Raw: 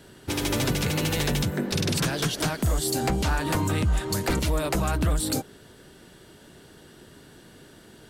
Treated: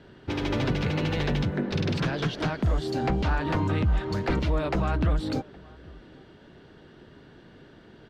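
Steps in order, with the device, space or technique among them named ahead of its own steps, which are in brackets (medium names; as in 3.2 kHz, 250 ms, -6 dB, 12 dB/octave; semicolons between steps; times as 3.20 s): shout across a valley (distance through air 240 m; echo from a far wall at 140 m, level -24 dB)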